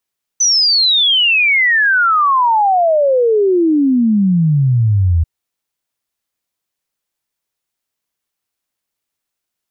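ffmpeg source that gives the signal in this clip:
-f lavfi -i "aevalsrc='0.355*clip(min(t,4.84-t)/0.01,0,1)*sin(2*PI*6100*4.84/log(79/6100)*(exp(log(79/6100)*t/4.84)-1))':d=4.84:s=44100"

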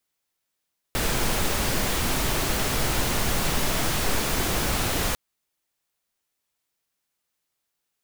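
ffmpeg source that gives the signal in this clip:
-f lavfi -i "anoisesrc=c=pink:a=0.324:d=4.2:r=44100:seed=1"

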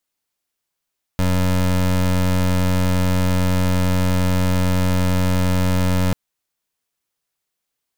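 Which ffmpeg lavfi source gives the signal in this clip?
-f lavfi -i "aevalsrc='0.141*(2*lt(mod(91.2*t,1),0.24)-1)':d=4.94:s=44100"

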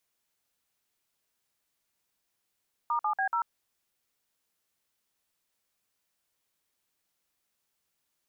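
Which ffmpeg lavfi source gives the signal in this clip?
-f lavfi -i "aevalsrc='0.0398*clip(min(mod(t,0.143),0.091-mod(t,0.143))/0.002,0,1)*(eq(floor(t/0.143),0)*(sin(2*PI*941*mod(t,0.143))+sin(2*PI*1209*mod(t,0.143)))+eq(floor(t/0.143),1)*(sin(2*PI*852*mod(t,0.143))+sin(2*PI*1209*mod(t,0.143)))+eq(floor(t/0.143),2)*(sin(2*PI*770*mod(t,0.143))+sin(2*PI*1633*mod(t,0.143)))+eq(floor(t/0.143),3)*(sin(2*PI*941*mod(t,0.143))+sin(2*PI*1336*mod(t,0.143))))':d=0.572:s=44100"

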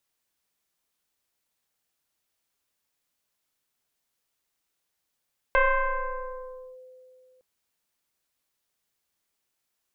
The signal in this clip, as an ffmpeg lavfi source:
-f lavfi -i "aevalsrc='0.158*pow(10,-3*t/2.62)*sin(2*PI*511*t+2.9*clip(1-t/1.22,0,1)*sin(2*PI*1.03*511*t))':d=1.86:s=44100"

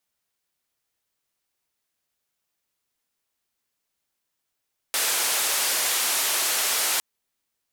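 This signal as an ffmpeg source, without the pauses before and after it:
-f lavfi -i "anoisesrc=c=white:d=2.06:r=44100:seed=1,highpass=f=480,lowpass=f=13000,volume=-16.7dB"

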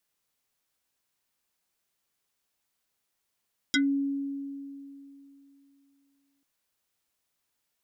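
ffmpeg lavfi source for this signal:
-f lavfi -i "aevalsrc='0.1*pow(10,-3*t/3.01)*sin(2*PI*278*t+4.2*pow(10,-3*t/0.13)*sin(2*PI*6.35*278*t))':d=2.69:s=44100"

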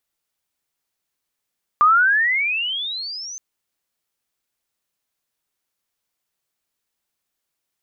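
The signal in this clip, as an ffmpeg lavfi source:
-f lavfi -i "aevalsrc='pow(10,(-9.5-21*t/1.57)/20)*sin(2*PI*1180*1.57/(29*log(2)/12)*(exp(29*log(2)/12*t/1.57)-1))':d=1.57:s=44100"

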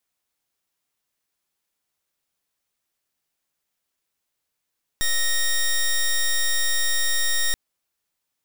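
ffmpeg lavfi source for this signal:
-f lavfi -i "aevalsrc='0.0944*(2*lt(mod(1860*t,1),0.11)-1)':d=2.53:s=44100"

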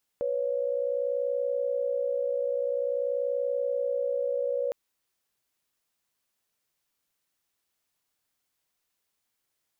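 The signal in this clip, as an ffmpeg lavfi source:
-f lavfi -i "aevalsrc='0.0376*(sin(2*PI*493.88*t)+sin(2*PI*554.37*t))':d=4.51:s=44100"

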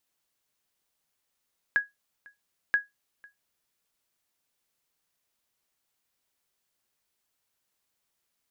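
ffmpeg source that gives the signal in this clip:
-f lavfi -i "aevalsrc='0.178*(sin(2*PI*1660*mod(t,0.98))*exp(-6.91*mod(t,0.98)/0.17)+0.0447*sin(2*PI*1660*max(mod(t,0.98)-0.5,0))*exp(-6.91*max(mod(t,0.98)-0.5,0)/0.17))':d=1.96:s=44100"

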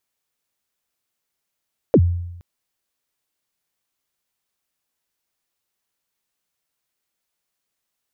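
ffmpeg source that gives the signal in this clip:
-f lavfi -i "aevalsrc='0.447*pow(10,-3*t/0.9)*sin(2*PI*(580*0.06/log(87/580)*(exp(log(87/580)*min(t,0.06)/0.06)-1)+87*max(t-0.06,0)))':d=0.47:s=44100"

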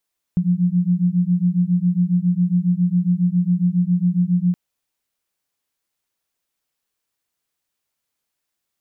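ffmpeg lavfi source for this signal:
-f lavfi -i "aevalsrc='0.126*(sin(2*PI*174*t)+sin(2*PI*181.3*t))':d=4.17:s=44100"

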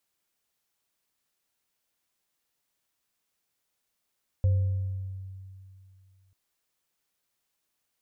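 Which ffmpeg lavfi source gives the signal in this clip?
-f lavfi -i "aevalsrc='0.119*pow(10,-3*t/2.58)*sin(2*PI*95.2*t)+0.0133*pow(10,-3*t/1.17)*sin(2*PI*521*t)':d=1.89:s=44100"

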